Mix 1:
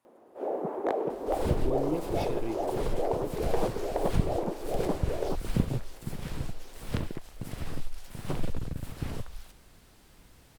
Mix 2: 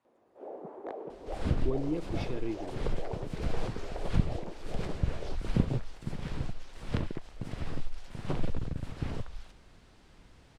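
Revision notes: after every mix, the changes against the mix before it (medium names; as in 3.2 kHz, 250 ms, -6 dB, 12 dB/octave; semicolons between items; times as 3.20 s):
first sound -11.0 dB; master: add distance through air 82 m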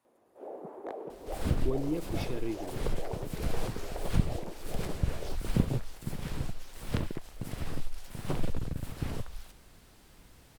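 master: remove distance through air 82 m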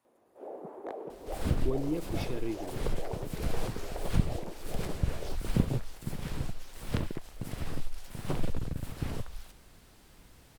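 no change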